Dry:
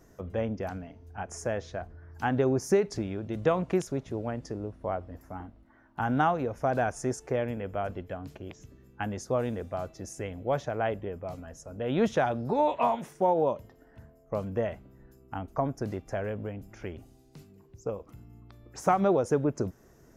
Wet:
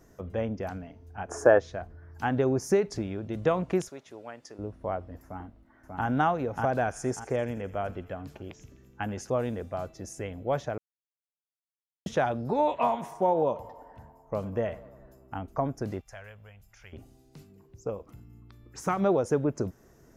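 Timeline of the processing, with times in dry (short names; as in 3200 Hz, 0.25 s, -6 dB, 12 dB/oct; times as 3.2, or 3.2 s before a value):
1.3–1.58 spectral gain 240–1800 Hz +13 dB
3.89–4.59 HPF 1300 Hz 6 dB/oct
5.24–6.06 echo throw 0.59 s, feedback 30%, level -2 dB
6.72–9.3 thin delay 84 ms, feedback 66%, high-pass 1400 Hz, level -16 dB
10.78–12.06 mute
12.78–15.41 narrowing echo 98 ms, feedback 77%, level -17 dB
16.01–16.93 passive tone stack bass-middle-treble 10-0-10
18.2–18.97 bell 660 Hz -10.5 dB 0.69 oct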